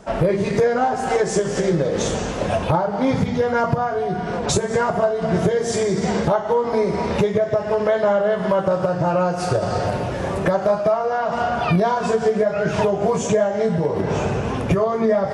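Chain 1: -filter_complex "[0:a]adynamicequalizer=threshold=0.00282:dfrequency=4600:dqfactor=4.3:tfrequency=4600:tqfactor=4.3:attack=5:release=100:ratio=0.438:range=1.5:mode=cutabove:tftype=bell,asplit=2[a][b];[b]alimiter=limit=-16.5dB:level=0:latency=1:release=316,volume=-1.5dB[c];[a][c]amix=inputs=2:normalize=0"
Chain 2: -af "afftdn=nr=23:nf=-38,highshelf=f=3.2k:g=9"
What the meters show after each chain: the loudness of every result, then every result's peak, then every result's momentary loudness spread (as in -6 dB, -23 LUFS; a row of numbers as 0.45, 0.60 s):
-17.0, -20.0 LUFS; -5.5, -3.5 dBFS; 3, 4 LU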